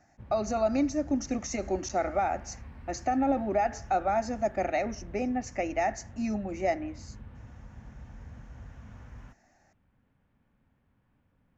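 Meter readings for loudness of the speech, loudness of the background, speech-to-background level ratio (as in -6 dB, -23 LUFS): -30.5 LUFS, -48.0 LUFS, 17.5 dB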